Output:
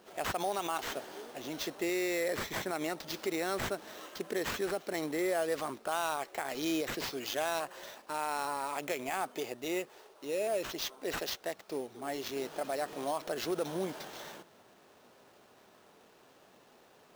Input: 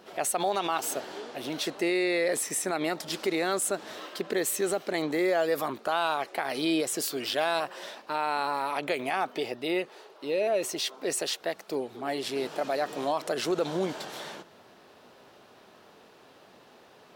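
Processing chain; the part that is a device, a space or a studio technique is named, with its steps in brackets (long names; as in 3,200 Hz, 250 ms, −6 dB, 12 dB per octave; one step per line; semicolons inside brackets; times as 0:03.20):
early companding sampler (sample-rate reduction 9,600 Hz, jitter 0%; log-companded quantiser 6 bits)
level −6 dB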